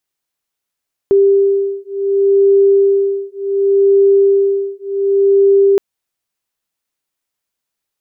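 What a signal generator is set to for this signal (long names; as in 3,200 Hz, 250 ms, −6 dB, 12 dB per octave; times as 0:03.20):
two tones that beat 395 Hz, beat 0.68 Hz, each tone −12 dBFS 4.67 s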